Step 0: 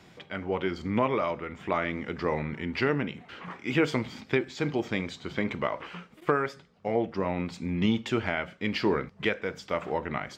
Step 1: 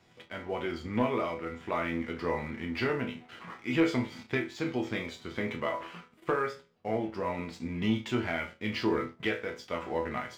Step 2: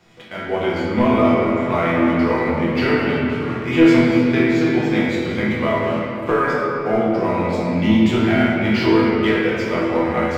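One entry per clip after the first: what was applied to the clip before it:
resonators tuned to a chord E2 sus4, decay 0.31 s; leveller curve on the samples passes 1; level +5.5 dB
convolution reverb RT60 3.4 s, pre-delay 6 ms, DRR −5.5 dB; level +7 dB

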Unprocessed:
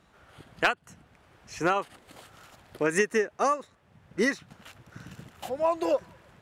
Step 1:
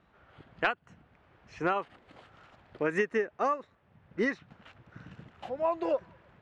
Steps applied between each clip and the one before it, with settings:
low-pass filter 2,900 Hz 12 dB per octave
level −3.5 dB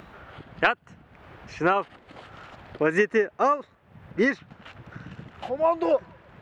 upward compression, threshold −44 dBFS
level +7 dB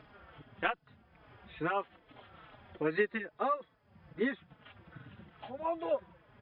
hearing-aid frequency compression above 3,200 Hz 4 to 1
barber-pole flanger 4.2 ms −2.4 Hz
level −7.5 dB

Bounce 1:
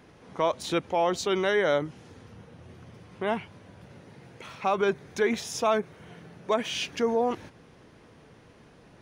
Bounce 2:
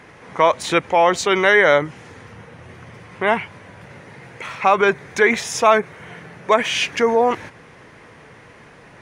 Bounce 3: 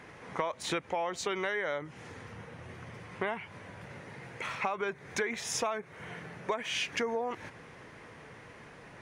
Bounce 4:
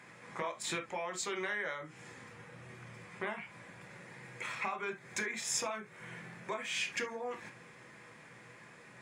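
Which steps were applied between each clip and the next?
graphic EQ with 10 bands 125 Hz +4 dB, 500 Hz +4 dB, 1,000 Hz +6 dB, 2,000 Hz +12 dB, 8,000 Hz +7 dB; level +3.5 dB
downward compressor 16 to 1, threshold −23 dBFS, peak gain reduction 16 dB; level −6 dB
convolution reverb, pre-delay 3 ms, DRR 3.5 dB; level −2.5 dB

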